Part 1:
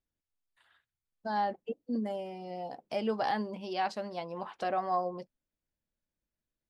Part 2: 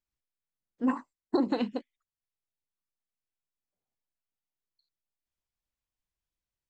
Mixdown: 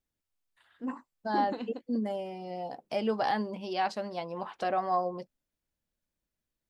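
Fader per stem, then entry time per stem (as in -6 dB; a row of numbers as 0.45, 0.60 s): +2.0, -8.5 dB; 0.00, 0.00 s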